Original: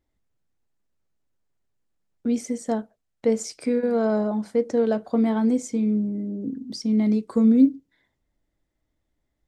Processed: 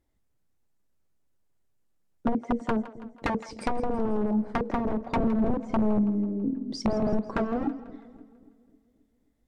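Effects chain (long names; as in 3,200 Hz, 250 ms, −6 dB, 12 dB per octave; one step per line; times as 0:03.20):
wrap-around overflow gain 18 dB
high-shelf EQ 2,100 Hz −5 dB
treble cut that deepens with the level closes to 450 Hz, closed at −21.5 dBFS
high-shelf EQ 7,900 Hz +10 dB
on a send: echo with a time of its own for lows and highs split 460 Hz, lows 266 ms, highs 164 ms, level −15.5 dB
on the sum: level +1.5 dB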